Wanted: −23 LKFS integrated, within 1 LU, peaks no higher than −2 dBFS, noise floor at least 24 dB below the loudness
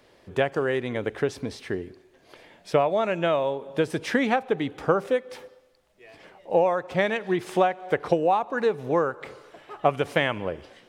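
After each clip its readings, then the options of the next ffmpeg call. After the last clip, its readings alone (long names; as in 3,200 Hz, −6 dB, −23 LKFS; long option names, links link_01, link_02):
integrated loudness −25.5 LKFS; sample peak −6.0 dBFS; target loudness −23.0 LKFS
→ -af "volume=2.5dB"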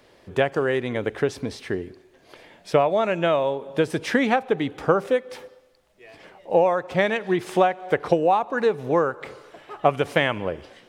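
integrated loudness −23.0 LKFS; sample peak −3.5 dBFS; background noise floor −56 dBFS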